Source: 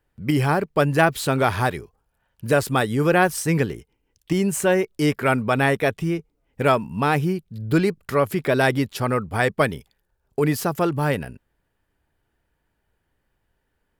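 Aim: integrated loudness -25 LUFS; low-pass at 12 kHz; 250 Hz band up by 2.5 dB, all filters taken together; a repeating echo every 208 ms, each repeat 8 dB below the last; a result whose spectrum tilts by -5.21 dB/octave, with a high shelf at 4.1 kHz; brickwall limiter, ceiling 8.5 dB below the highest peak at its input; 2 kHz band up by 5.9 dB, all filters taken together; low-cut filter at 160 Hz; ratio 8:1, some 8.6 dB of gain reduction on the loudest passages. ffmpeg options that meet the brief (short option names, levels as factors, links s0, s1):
-af "highpass=160,lowpass=12000,equalizer=f=250:t=o:g=4.5,equalizer=f=2000:t=o:g=9,highshelf=f=4100:g=-6,acompressor=threshold=0.112:ratio=8,alimiter=limit=0.178:level=0:latency=1,aecho=1:1:208|416|624|832|1040:0.398|0.159|0.0637|0.0255|0.0102,volume=1.33"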